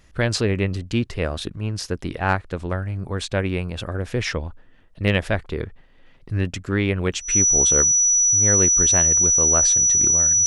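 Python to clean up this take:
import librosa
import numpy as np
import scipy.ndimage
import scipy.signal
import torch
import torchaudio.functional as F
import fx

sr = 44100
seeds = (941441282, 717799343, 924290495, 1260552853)

y = fx.fix_declip(x, sr, threshold_db=-6.5)
y = fx.notch(y, sr, hz=5900.0, q=30.0)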